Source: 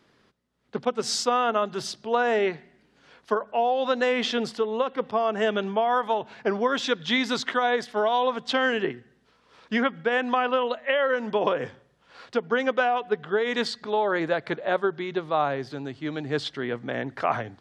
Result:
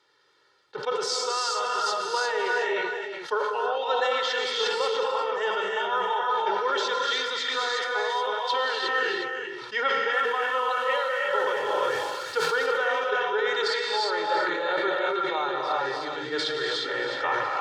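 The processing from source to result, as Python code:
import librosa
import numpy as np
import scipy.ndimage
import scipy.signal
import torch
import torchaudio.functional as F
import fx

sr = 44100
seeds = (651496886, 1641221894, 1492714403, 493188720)

y = fx.zero_step(x, sr, step_db=-38.5, at=(10.13, 12.53))
y = fx.bandpass_q(y, sr, hz=2700.0, q=1.2)
y = fx.peak_eq(y, sr, hz=2500.0, db=-14.5, octaves=1.0)
y = fx.echo_multitap(y, sr, ms=(116, 282, 364), db=(-17.5, -14.0, -11.5))
y = fx.rev_gated(y, sr, seeds[0], gate_ms=380, shape='rising', drr_db=-2.0)
y = fx.rider(y, sr, range_db=3, speed_s=0.5)
y = y + 0.97 * np.pad(y, (int(2.2 * sr / 1000.0), 0))[:len(y)]
y = fx.sustainer(y, sr, db_per_s=26.0)
y = y * 10.0 ** (5.0 / 20.0)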